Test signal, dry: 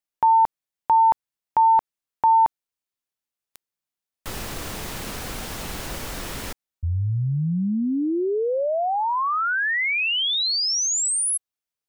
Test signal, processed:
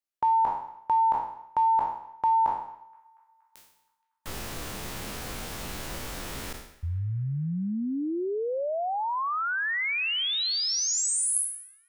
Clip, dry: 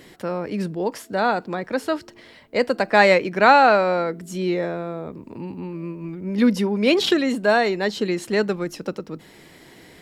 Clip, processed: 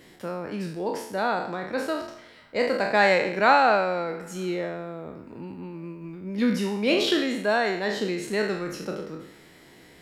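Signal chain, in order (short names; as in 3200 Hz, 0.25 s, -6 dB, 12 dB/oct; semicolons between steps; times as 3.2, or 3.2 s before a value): spectral trails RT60 0.68 s; on a send: narrowing echo 0.236 s, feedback 69%, band-pass 1600 Hz, level -23.5 dB; on the sum: gain -6.5 dB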